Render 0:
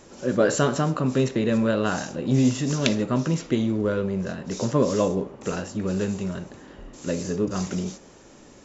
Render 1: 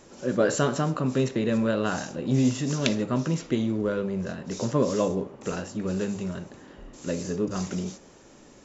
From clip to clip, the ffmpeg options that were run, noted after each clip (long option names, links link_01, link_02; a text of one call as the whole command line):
ffmpeg -i in.wav -af "bandreject=frequency=50:width_type=h:width=6,bandreject=frequency=100:width_type=h:width=6,volume=-2.5dB" out.wav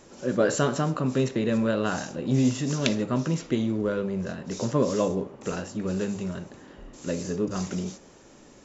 ffmpeg -i in.wav -af anull out.wav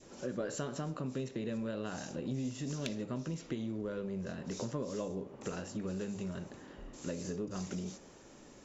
ffmpeg -i in.wav -af "adynamicequalizer=threshold=0.00794:dfrequency=1200:dqfactor=1.1:tfrequency=1200:tqfactor=1.1:attack=5:release=100:ratio=0.375:range=2:mode=cutabove:tftype=bell,acompressor=threshold=-32dB:ratio=4,aeval=exprs='0.126*(cos(1*acos(clip(val(0)/0.126,-1,1)))-cos(1*PI/2))+0.00141*(cos(6*acos(clip(val(0)/0.126,-1,1)))-cos(6*PI/2))':channel_layout=same,volume=-4dB" out.wav